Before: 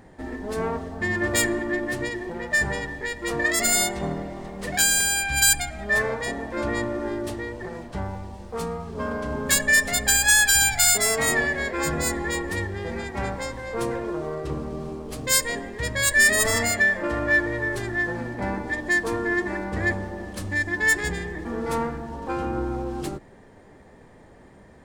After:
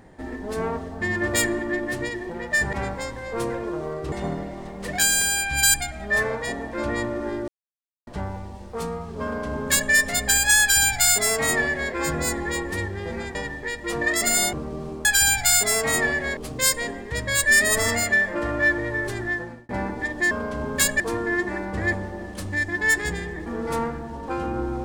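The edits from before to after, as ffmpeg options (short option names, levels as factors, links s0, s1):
-filter_complex "[0:a]asplit=12[s0][s1][s2][s3][s4][s5][s6][s7][s8][s9][s10][s11];[s0]atrim=end=2.732[s12];[s1]atrim=start=13.138:end=14.532[s13];[s2]atrim=start=3.908:end=7.27,asetpts=PTS-STARTPTS,afade=t=out:st=3.358:d=0.004:c=hsin[s14];[s3]atrim=start=7.27:end=7.86,asetpts=PTS-STARTPTS,volume=0[s15];[s4]atrim=start=7.86:end=13.142,asetpts=PTS-STARTPTS,afade=t=in:d=0.004:c=hsin[s16];[s5]atrim=start=2.728:end=3.912[s17];[s6]atrim=start=14.528:end=15.052[s18];[s7]atrim=start=10.388:end=11.712[s19];[s8]atrim=start=15.048:end=18.37,asetpts=PTS-STARTPTS,afade=t=out:st=2.882:d=0.44[s20];[s9]atrim=start=18.37:end=18.992,asetpts=PTS-STARTPTS,afade=t=in:d=0.004:c=hsin[s21];[s10]atrim=start=9.018:end=9.712[s22];[s11]atrim=start=18.988[s23];[s12][s13]acrossfade=d=0.004:c1=hsin:c2=hsin[s24];[s14][s15][s16]concat=n=3:v=0:a=1[s25];[s24][s25]acrossfade=d=0.004:c1=hsin:c2=hsin[s26];[s26][s17]acrossfade=d=0.004:c1=hsin:c2=hsin[s27];[s27][s18]acrossfade=d=0.004:c1=hsin:c2=hsin[s28];[s28][s19]acrossfade=d=0.004:c1=hsin:c2=hsin[s29];[s20][s21]concat=n=2:v=0:a=1[s30];[s29][s30]acrossfade=d=0.004:c1=hsin:c2=hsin[s31];[s31][s22]acrossfade=d=0.004:c1=hsin:c2=hsin[s32];[s32][s23]acrossfade=d=0.004:c1=hsin:c2=hsin"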